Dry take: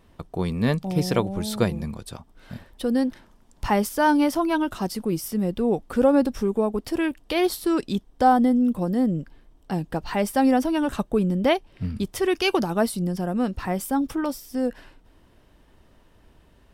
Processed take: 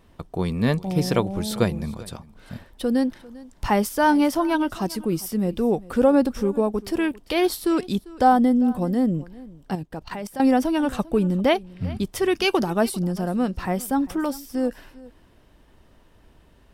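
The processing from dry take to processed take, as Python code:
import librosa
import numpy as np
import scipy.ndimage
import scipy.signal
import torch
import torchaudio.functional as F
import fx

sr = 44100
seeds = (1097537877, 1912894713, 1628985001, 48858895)

p1 = fx.level_steps(x, sr, step_db=16, at=(9.75, 10.4))
p2 = p1 + fx.echo_single(p1, sr, ms=397, db=-20.5, dry=0)
y = F.gain(torch.from_numpy(p2), 1.0).numpy()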